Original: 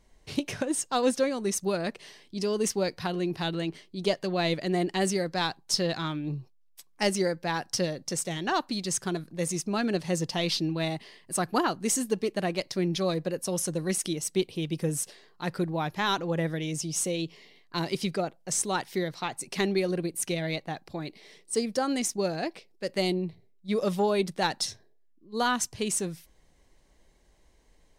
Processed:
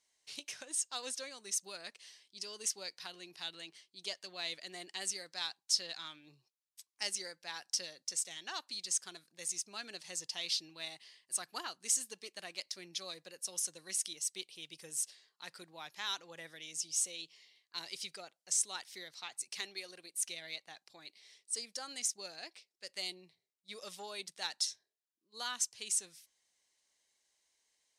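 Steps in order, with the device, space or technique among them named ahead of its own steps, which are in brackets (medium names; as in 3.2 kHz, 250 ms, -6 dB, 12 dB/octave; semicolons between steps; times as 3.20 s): piezo pickup straight into a mixer (low-pass 7.6 kHz 12 dB/octave; differentiator); 19.60–20.18 s: high-pass 300 Hz 6 dB/octave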